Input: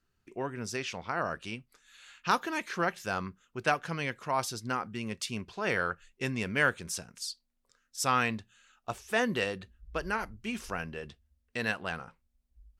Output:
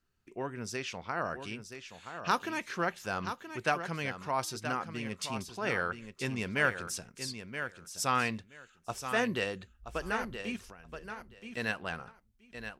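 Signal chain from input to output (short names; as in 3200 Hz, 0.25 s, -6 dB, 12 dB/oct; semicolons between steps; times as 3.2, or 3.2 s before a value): 10.56–11.57 compressor 10:1, threshold -47 dBFS, peak gain reduction 17 dB; feedback echo 0.975 s, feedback 16%, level -9 dB; gain -2 dB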